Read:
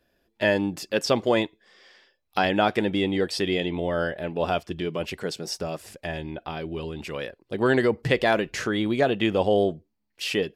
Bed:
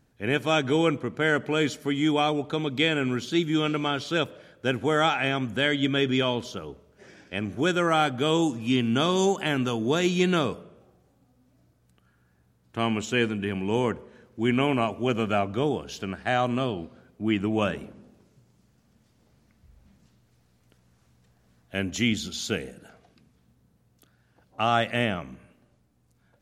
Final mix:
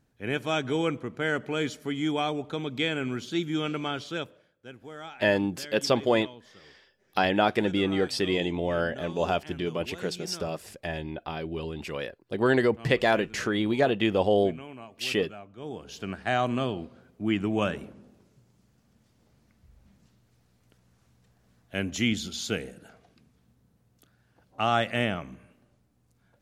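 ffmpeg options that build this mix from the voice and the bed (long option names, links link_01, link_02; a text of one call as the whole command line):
ffmpeg -i stem1.wav -i stem2.wav -filter_complex "[0:a]adelay=4800,volume=-1.5dB[link_01];[1:a]volume=13.5dB,afade=type=out:start_time=3.97:duration=0.56:silence=0.177828,afade=type=in:start_time=15.57:duration=0.56:silence=0.125893[link_02];[link_01][link_02]amix=inputs=2:normalize=0" out.wav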